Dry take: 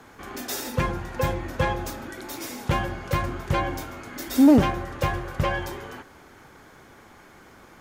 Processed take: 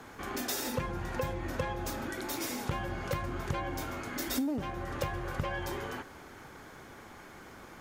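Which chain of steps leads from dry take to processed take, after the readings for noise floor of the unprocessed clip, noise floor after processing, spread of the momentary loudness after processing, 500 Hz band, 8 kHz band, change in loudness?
−51 dBFS, −51 dBFS, 16 LU, −8.5 dB, −3.0 dB, −10.5 dB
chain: downward compressor 12 to 1, threshold −30 dBFS, peak gain reduction 19 dB

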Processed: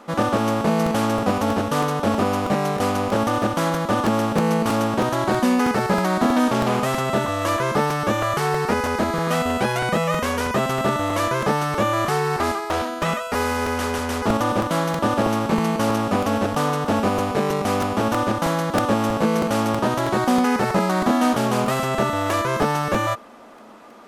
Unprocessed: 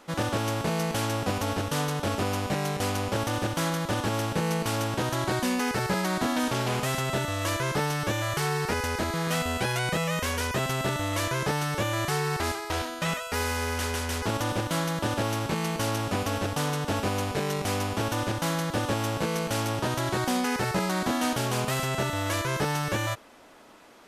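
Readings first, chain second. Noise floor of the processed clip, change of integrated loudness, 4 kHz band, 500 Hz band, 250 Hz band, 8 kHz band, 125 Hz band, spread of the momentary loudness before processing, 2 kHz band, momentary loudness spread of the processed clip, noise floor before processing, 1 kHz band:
−29 dBFS, +7.0 dB, +1.5 dB, +8.5 dB, +9.0 dB, +0.5 dB, +2.5 dB, 2 LU, +4.0 dB, 3 LU, −37 dBFS, +9.0 dB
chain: parametric band 650 Hz +9 dB 2.7 octaves
hollow resonant body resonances 220/1,200 Hz, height 12 dB, ringing for 95 ms
regular buffer underruns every 0.32 s, samples 128, repeat, from 0:00.86

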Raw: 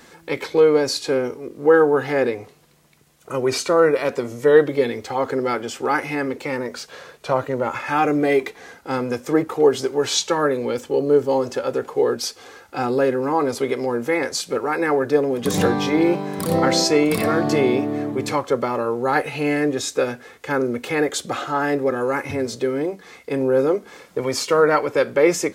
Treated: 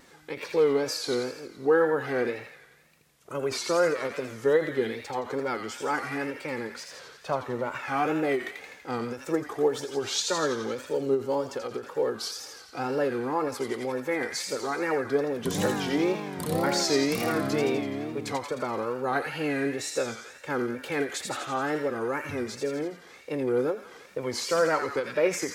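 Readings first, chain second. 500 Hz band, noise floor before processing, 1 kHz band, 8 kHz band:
−8.5 dB, −50 dBFS, −8.0 dB, −6.0 dB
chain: delay with a high-pass on its return 85 ms, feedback 63%, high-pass 1,500 Hz, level −4 dB
tape wow and flutter 130 cents
every ending faded ahead of time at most 190 dB per second
level −8 dB

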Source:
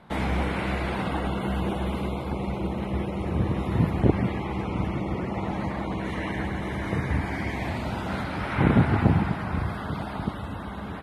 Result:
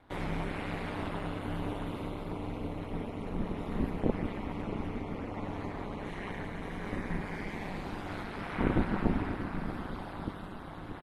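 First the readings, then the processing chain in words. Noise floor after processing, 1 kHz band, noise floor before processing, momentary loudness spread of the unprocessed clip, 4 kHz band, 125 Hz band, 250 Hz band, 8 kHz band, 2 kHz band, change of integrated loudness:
−43 dBFS, −8.5 dB, −34 dBFS, 8 LU, −8.5 dB, −12.0 dB, −8.0 dB, can't be measured, −8.5 dB, −9.0 dB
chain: single-tap delay 633 ms −10.5 dB
ring modulation 99 Hz
level −6 dB

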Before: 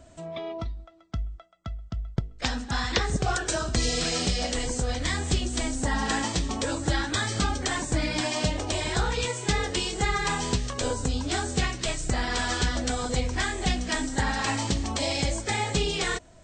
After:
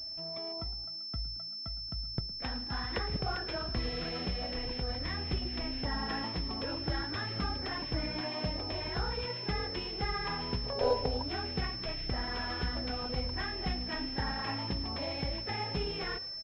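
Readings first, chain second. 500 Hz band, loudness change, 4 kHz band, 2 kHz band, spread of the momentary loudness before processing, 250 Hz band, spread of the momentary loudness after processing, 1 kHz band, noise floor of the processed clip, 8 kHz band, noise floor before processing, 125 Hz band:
−6.0 dB, −7.5 dB, −4.5 dB, −10.0 dB, 9 LU, −8.5 dB, 3 LU, −8.0 dB, −41 dBFS, below −30 dB, −51 dBFS, −8.5 dB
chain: echo with shifted repeats 110 ms, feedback 51%, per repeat +57 Hz, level −19 dB
gain on a spectral selection 0:10.65–0:11.23, 380–1,000 Hz +11 dB
switching amplifier with a slow clock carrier 5,300 Hz
level −8.5 dB

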